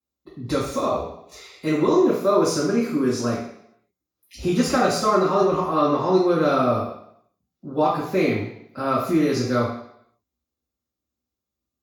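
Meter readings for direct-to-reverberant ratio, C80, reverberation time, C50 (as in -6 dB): -14.0 dB, 6.5 dB, 0.70 s, 2.5 dB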